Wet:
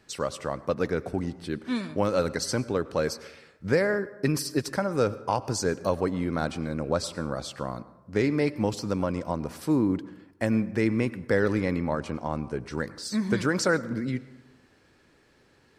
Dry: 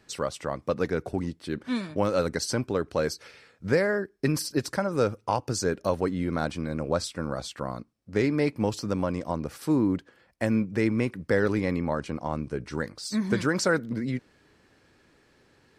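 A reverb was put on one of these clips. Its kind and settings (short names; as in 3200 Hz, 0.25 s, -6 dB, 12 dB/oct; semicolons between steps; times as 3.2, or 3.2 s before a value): plate-style reverb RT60 1 s, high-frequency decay 0.45×, pre-delay 85 ms, DRR 16.5 dB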